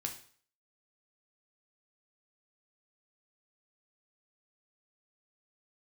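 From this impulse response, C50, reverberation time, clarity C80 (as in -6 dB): 9.5 dB, 0.50 s, 14.0 dB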